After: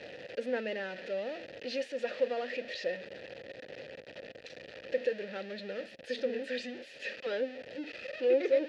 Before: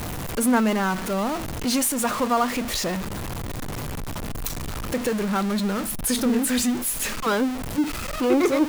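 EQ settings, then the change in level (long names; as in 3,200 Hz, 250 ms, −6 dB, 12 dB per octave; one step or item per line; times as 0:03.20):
formant filter e
high-pass filter 61 Hz
low-pass with resonance 4,600 Hz, resonance Q 2.5
0.0 dB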